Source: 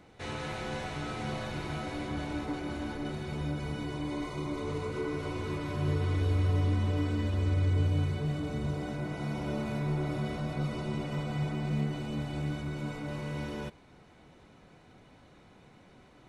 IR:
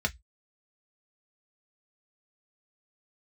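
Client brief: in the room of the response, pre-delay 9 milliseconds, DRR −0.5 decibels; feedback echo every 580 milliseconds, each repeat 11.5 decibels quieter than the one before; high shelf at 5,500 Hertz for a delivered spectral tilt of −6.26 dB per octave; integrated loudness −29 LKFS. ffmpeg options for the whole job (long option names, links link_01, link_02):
-filter_complex "[0:a]highshelf=frequency=5500:gain=4.5,aecho=1:1:580|1160|1740:0.266|0.0718|0.0194,asplit=2[link_01][link_02];[1:a]atrim=start_sample=2205,adelay=9[link_03];[link_02][link_03]afir=irnorm=-1:irlink=0,volume=-7dB[link_04];[link_01][link_04]amix=inputs=2:normalize=0,volume=0.5dB"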